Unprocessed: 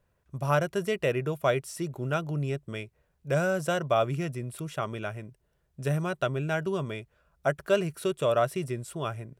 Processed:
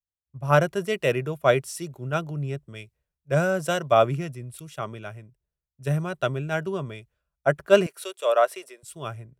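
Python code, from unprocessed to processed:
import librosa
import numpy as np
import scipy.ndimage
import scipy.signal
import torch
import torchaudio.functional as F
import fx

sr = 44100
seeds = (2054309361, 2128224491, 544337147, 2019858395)

y = fx.highpass(x, sr, hz=450.0, slope=24, at=(7.86, 8.83))
y = fx.band_widen(y, sr, depth_pct=100)
y = y * librosa.db_to_amplitude(2.5)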